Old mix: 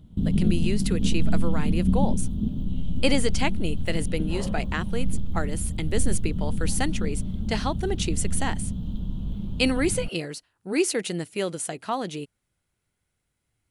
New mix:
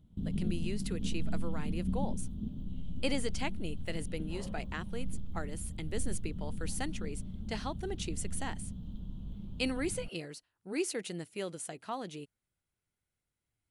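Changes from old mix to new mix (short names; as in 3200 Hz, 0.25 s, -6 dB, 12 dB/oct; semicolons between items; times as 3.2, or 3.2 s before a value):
speech -10.5 dB; background -12.0 dB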